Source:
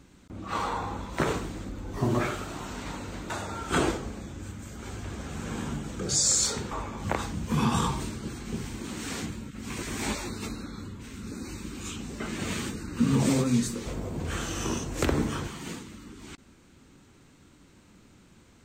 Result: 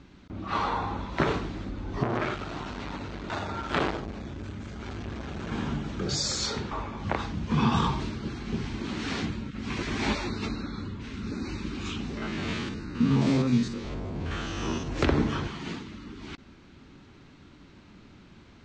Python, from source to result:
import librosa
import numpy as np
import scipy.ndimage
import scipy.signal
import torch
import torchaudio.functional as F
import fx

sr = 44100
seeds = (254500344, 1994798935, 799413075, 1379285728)

y = fx.transformer_sat(x, sr, knee_hz=1300.0, at=(2.03, 5.52))
y = fx.spec_steps(y, sr, hold_ms=50, at=(12.17, 14.88))
y = scipy.signal.sosfilt(scipy.signal.butter(4, 5000.0, 'lowpass', fs=sr, output='sos'), y)
y = fx.notch(y, sr, hz=500.0, q=12.0)
y = fx.rider(y, sr, range_db=3, speed_s=2.0)
y = y * 10.0 ** (1.5 / 20.0)